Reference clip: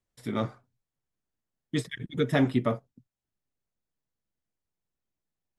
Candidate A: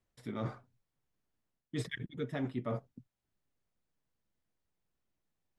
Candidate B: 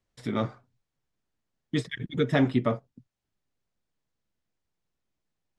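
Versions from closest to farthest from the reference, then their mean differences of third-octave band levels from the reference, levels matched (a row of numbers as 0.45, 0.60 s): B, A; 1.0, 4.0 dB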